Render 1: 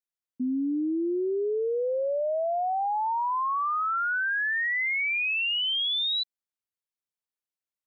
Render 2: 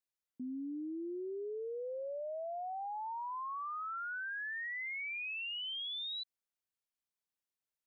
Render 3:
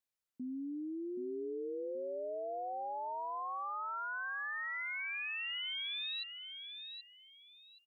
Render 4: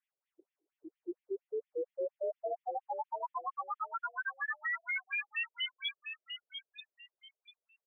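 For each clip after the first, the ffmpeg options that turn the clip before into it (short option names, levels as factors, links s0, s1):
-af "alimiter=level_in=3.76:limit=0.0631:level=0:latency=1,volume=0.266,volume=0.794"
-af "aecho=1:1:776|1552|2328:0.422|0.101|0.0243"
-af "afftfilt=real='re*between(b*sr/1024,450*pow(2600/450,0.5+0.5*sin(2*PI*4.3*pts/sr))/1.41,450*pow(2600/450,0.5+0.5*sin(2*PI*4.3*pts/sr))*1.41)':imag='im*between(b*sr/1024,450*pow(2600/450,0.5+0.5*sin(2*PI*4.3*pts/sr))/1.41,450*pow(2600/450,0.5+0.5*sin(2*PI*4.3*pts/sr))*1.41)':win_size=1024:overlap=0.75,volume=2.24"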